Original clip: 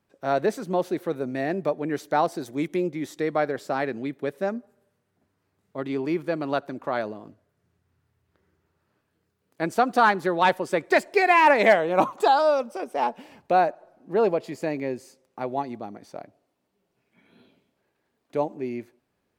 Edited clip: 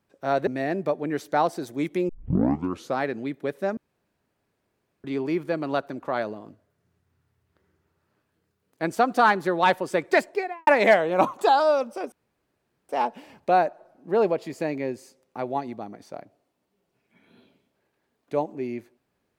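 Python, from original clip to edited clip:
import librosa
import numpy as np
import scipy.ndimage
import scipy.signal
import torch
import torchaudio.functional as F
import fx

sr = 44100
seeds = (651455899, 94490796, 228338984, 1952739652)

y = fx.studio_fade_out(x, sr, start_s=10.93, length_s=0.53)
y = fx.edit(y, sr, fx.cut(start_s=0.47, length_s=0.79),
    fx.tape_start(start_s=2.88, length_s=0.9),
    fx.room_tone_fill(start_s=4.56, length_s=1.27),
    fx.insert_room_tone(at_s=12.91, length_s=0.77), tone=tone)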